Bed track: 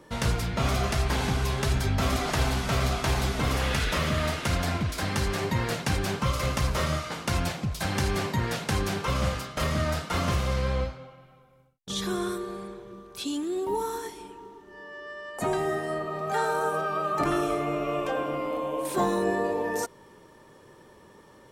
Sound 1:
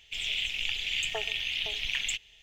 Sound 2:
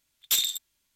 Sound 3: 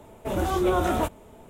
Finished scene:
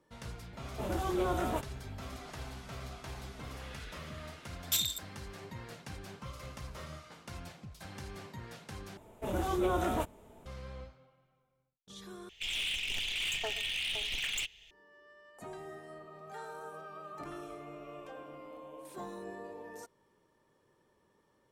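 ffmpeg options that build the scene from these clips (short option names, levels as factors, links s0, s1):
-filter_complex "[3:a]asplit=2[s0][s1];[0:a]volume=0.119[s2];[1:a]asoftclip=type=hard:threshold=0.0316[s3];[s2]asplit=3[s4][s5][s6];[s4]atrim=end=8.974[s7];[s1]atrim=end=1.49,asetpts=PTS-STARTPTS,volume=0.422[s8];[s5]atrim=start=10.456:end=12.294[s9];[s3]atrim=end=2.42,asetpts=PTS-STARTPTS,volume=0.891[s10];[s6]atrim=start=14.706[s11];[s0]atrim=end=1.49,asetpts=PTS-STARTPTS,volume=0.355,afade=t=in:d=0.004:c=hsin,afade=t=out:st=1.486:d=0.004:c=hsin,adelay=530[s12];[2:a]atrim=end=0.95,asetpts=PTS-STARTPTS,volume=0.473,afade=t=in:d=0.004:c=hsin,afade=t=out:st=0.946:d=0.004:c=hsin,adelay=194481S[s13];[s7][s8]acrossfade=d=0.004:c1=hsin:c2=hsin[s14];[s14][s9]acrossfade=d=0.004:c1=hsin:c2=hsin[s15];[s15][s10]acrossfade=d=0.004:c1=hsin:c2=hsin[s16];[s16][s11]acrossfade=d=0.004:c1=hsin:c2=hsin[s17];[s17][s12][s13]amix=inputs=3:normalize=0"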